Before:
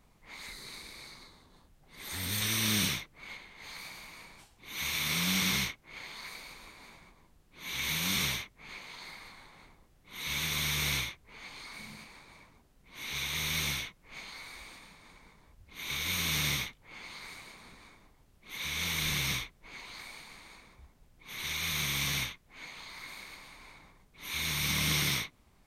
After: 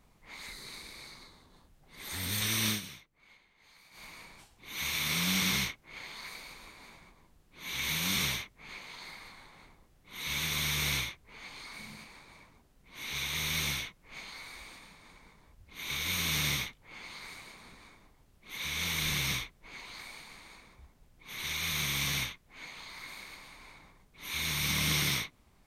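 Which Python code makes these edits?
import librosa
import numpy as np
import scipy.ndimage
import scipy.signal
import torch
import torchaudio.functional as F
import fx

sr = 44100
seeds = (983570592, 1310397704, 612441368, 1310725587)

y = fx.edit(x, sr, fx.fade_down_up(start_s=2.68, length_s=1.36, db=-15.0, fade_s=0.13), tone=tone)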